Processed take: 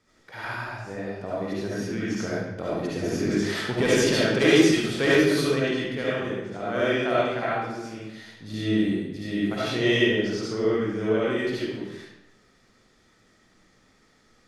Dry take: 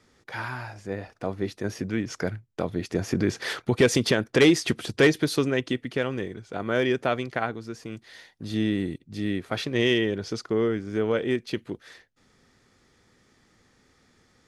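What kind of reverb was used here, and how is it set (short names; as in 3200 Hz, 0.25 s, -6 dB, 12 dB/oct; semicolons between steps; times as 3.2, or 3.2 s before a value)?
digital reverb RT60 0.95 s, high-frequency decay 0.85×, pre-delay 30 ms, DRR -8.5 dB; gain -7 dB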